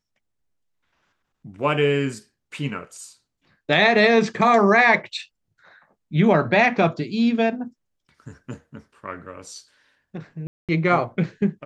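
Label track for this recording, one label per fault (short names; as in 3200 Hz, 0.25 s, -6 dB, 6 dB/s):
10.470000	10.690000	gap 0.217 s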